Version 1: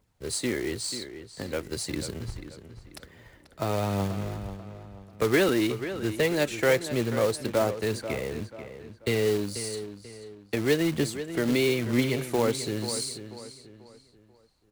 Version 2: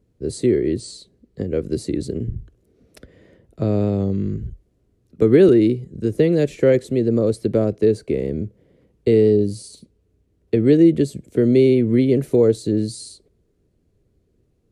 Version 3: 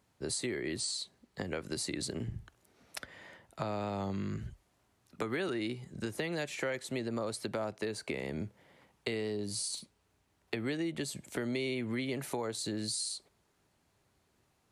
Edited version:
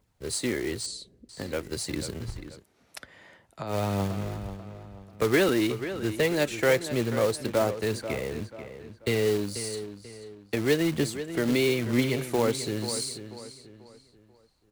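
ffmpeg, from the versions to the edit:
ffmpeg -i take0.wav -i take1.wav -i take2.wav -filter_complex "[0:a]asplit=3[link_01][link_02][link_03];[link_01]atrim=end=0.862[link_04];[1:a]atrim=start=0.858:end=1.292[link_05];[link_02]atrim=start=1.288:end=2.65[link_06];[2:a]atrim=start=2.55:end=3.76[link_07];[link_03]atrim=start=3.66[link_08];[link_04][link_05]acrossfade=duration=0.004:curve1=hsin:curve2=hsin[link_09];[link_09][link_06]acrossfade=duration=0.004:curve1=hsin:curve2=hsin[link_10];[link_10][link_07]acrossfade=duration=0.1:curve1=tri:curve2=tri[link_11];[link_11][link_08]acrossfade=duration=0.1:curve1=tri:curve2=tri" out.wav

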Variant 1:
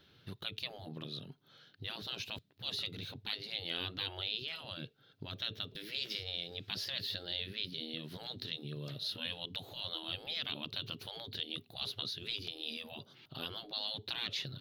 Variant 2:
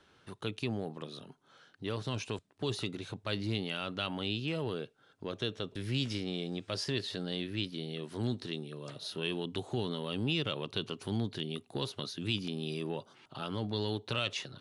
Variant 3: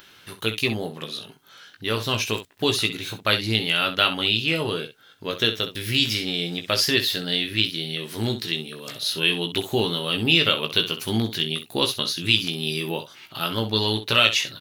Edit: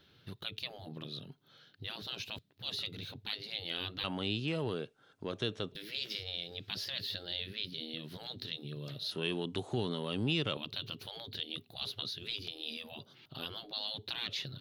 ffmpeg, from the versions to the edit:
ffmpeg -i take0.wav -i take1.wav -filter_complex "[1:a]asplit=2[link_01][link_02];[0:a]asplit=3[link_03][link_04][link_05];[link_03]atrim=end=4.042[link_06];[link_01]atrim=start=4.038:end=5.722[link_07];[link_04]atrim=start=5.718:end=9.112[link_08];[link_02]atrim=start=9.108:end=10.572[link_09];[link_05]atrim=start=10.568[link_10];[link_06][link_07]acrossfade=duration=0.004:curve1=hsin:curve2=hsin[link_11];[link_11][link_08]acrossfade=duration=0.004:curve1=hsin:curve2=hsin[link_12];[link_12][link_09]acrossfade=duration=0.004:curve1=hsin:curve2=hsin[link_13];[link_13][link_10]acrossfade=duration=0.004:curve1=hsin:curve2=hsin" out.wav

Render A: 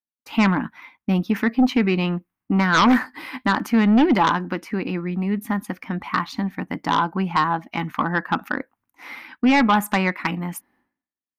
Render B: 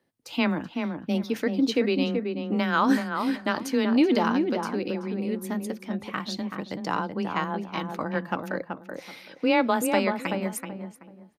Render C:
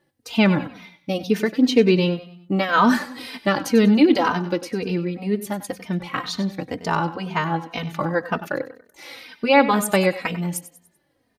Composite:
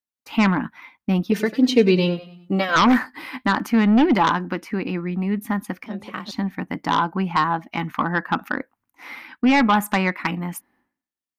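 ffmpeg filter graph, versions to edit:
ffmpeg -i take0.wav -i take1.wav -i take2.wav -filter_complex "[0:a]asplit=3[link_01][link_02][link_03];[link_01]atrim=end=1.322[link_04];[2:a]atrim=start=1.318:end=2.762[link_05];[link_02]atrim=start=2.758:end=5.862[link_06];[1:a]atrim=start=5.858:end=6.312[link_07];[link_03]atrim=start=6.308[link_08];[link_04][link_05]acrossfade=duration=0.004:curve1=hsin:curve2=hsin[link_09];[link_09][link_06]acrossfade=duration=0.004:curve1=hsin:curve2=hsin[link_10];[link_10][link_07]acrossfade=duration=0.004:curve1=hsin:curve2=hsin[link_11];[link_11][link_08]acrossfade=duration=0.004:curve1=hsin:curve2=hsin" out.wav

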